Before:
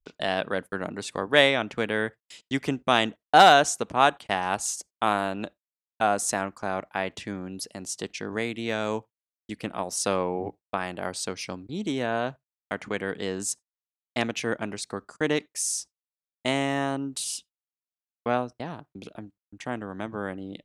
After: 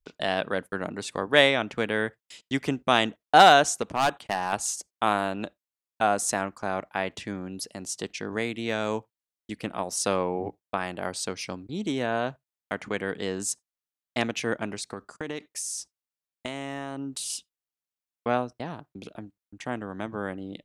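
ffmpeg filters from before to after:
-filter_complex "[0:a]asettb=1/sr,asplit=3[a][b][c];[a]atrim=end=3.824[d];[b]atrim=start=3.82:end=4.53,asetpts=PTS-STARTPTS,afade=t=in:d=0.004:c=qsin,afade=t=out:st=0.706:d=0.004:c=qsin,asoftclip=type=hard:threshold=-17.5dB[e];[c]atrim=start=4.526[f];[d][e]acrossfade=d=0.004:c1=hsin:c2=qsin[g];[g][f]acrossfade=d=0.004:c1=qsin:c2=hsin,asettb=1/sr,asplit=3[h][i][j];[h]atrim=end=14.744[k];[i]atrim=start=14.74:end=17.3,asetpts=PTS-STARTPTS,afade=t=in:d=0.004:c=qsin,afade=t=out:st=2.556:d=0.004:c=qsin,acompressor=threshold=-29dB:ratio=6:attack=3.2:release=140:knee=1:detection=peak[l];[j]atrim=start=17.296[m];[k][l]acrossfade=d=0.004:c1=hsin:c2=qsin[n];[n][m]acrossfade=d=0.004:c1=qsin:c2=hsin"

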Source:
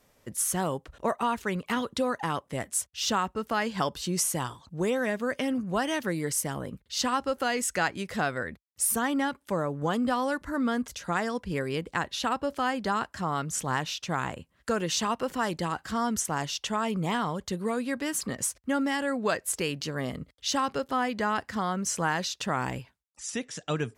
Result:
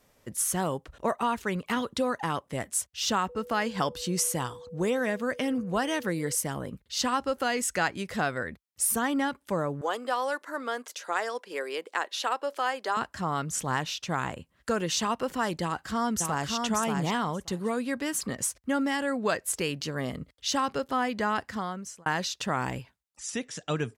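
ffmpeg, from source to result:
-filter_complex "[0:a]asettb=1/sr,asplit=3[a][b][c];[a]atrim=end=3.294[d];[b]atrim=start=3.29:end=6.35,asetpts=PTS-STARTPTS,afade=t=in:d=0.004:c=qsin,afade=t=out:st=3.056:d=0.004:c=qsin,aeval=exprs='val(0)+0.00708*sin(2*PI*490*n/s)':c=same[e];[c]atrim=start=6.346[f];[d][e]acrossfade=d=0.004:c1=hsin:c2=qsin[g];[g][f]acrossfade=d=0.004:c1=qsin:c2=hsin,asettb=1/sr,asplit=3[h][i][j];[h]atrim=end=9.814[k];[i]atrim=start=9.81:end=12.97,asetpts=PTS-STARTPTS,afade=t=in:d=0.004:c=qsin,afade=t=out:st=3.156:d=0.004:c=qsin,highpass=f=390:w=0.5412,highpass=f=390:w=1.3066[l];[j]atrim=start=12.966[m];[k][l]acrossfade=d=0.004:c1=hsin:c2=qsin[n];[n][m]acrossfade=d=0.004:c1=qsin:c2=hsin,asplit=2[o][p];[p]afade=t=in:st=15.62:d=0.01,afade=t=out:st=16.52:d=0.01,aecho=0:1:580|1160:0.630957|0.0630957[q];[o][q]amix=inputs=2:normalize=0,asplit=2[r][s];[r]atrim=end=22.06,asetpts=PTS-STARTPTS,afade=t=out:st=21.42:d=0.64[t];[s]atrim=start=22.06,asetpts=PTS-STARTPTS,afade=t=in:d=0.004:c=hsin[u];[t][u]concat=n=2:v=0:a=1"

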